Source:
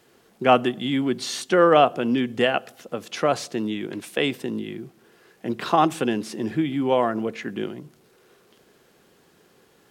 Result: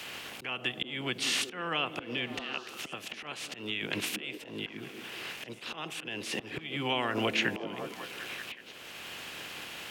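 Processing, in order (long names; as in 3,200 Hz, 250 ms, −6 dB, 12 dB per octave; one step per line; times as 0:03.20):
ceiling on every frequency bin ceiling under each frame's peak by 14 dB
high-pass filter 76 Hz 6 dB per octave
parametric band 2,700 Hz +12 dB 0.95 octaves
in parallel at −2.5 dB: brickwall limiter −5 dBFS, peak gain reduction 10 dB
on the sum: downward compressor 3 to 1, threshold −25 dBFS, peak gain reduction 16 dB
volume swells 664 ms
on a send: echo through a band-pass that steps 187 ms, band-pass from 250 Hz, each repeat 0.7 octaves, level −5.5 dB
on the sum: multiband upward and downward compressor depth 40%
level +1.5 dB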